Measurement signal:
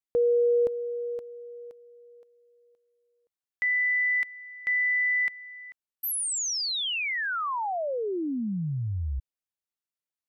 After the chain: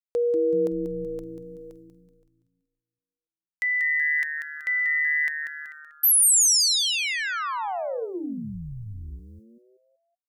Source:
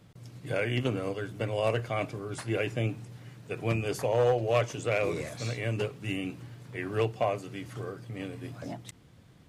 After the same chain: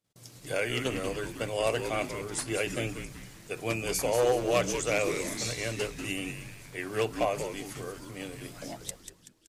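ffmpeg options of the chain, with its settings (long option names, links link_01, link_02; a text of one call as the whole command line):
ffmpeg -i in.wav -filter_complex "[0:a]agate=range=-27dB:threshold=-47dB:ratio=3:release=194:detection=rms,bass=frequency=250:gain=-8,treble=frequency=4000:gain=12,asplit=6[link_01][link_02][link_03][link_04][link_05][link_06];[link_02]adelay=189,afreqshift=-150,volume=-8dB[link_07];[link_03]adelay=378,afreqshift=-300,volume=-15.3dB[link_08];[link_04]adelay=567,afreqshift=-450,volume=-22.7dB[link_09];[link_05]adelay=756,afreqshift=-600,volume=-30dB[link_10];[link_06]adelay=945,afreqshift=-750,volume=-37.3dB[link_11];[link_01][link_07][link_08][link_09][link_10][link_11]amix=inputs=6:normalize=0" out.wav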